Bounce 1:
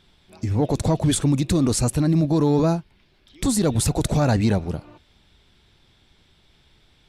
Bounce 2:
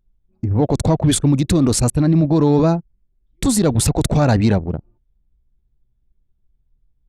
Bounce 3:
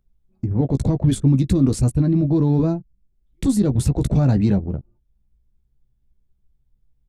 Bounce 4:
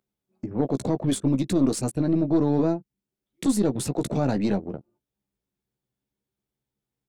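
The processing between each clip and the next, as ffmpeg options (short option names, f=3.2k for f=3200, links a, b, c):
-af "anlmdn=63.1,volume=4.5dB"
-filter_complex "[0:a]acrossover=split=370[a][b];[b]acompressor=threshold=-52dB:ratio=1.5[c];[a][c]amix=inputs=2:normalize=0,asplit=2[d][e];[e]adelay=15,volume=-8dB[f];[d][f]amix=inputs=2:normalize=0,volume=-1dB"
-af "highpass=280,aeval=exprs='0.266*(cos(1*acos(clip(val(0)/0.266,-1,1)))-cos(1*PI/2))+0.0211*(cos(4*acos(clip(val(0)/0.266,-1,1)))-cos(4*PI/2))':c=same"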